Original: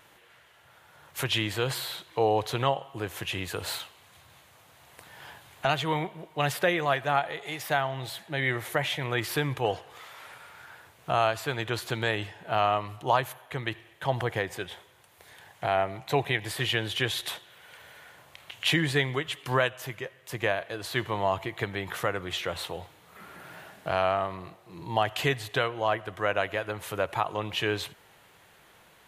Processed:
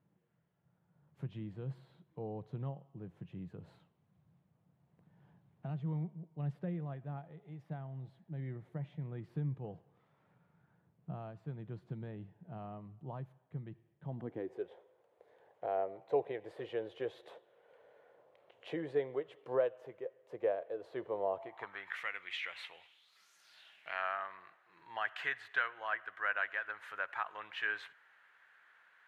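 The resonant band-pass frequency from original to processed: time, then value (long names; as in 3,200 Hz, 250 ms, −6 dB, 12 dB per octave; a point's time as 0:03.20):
resonant band-pass, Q 3.8
0:14.04 170 Hz
0:14.69 490 Hz
0:21.31 490 Hz
0:22.00 2,200 Hz
0:22.76 2,200 Hz
0:23.34 6,500 Hz
0:24.03 1,600 Hz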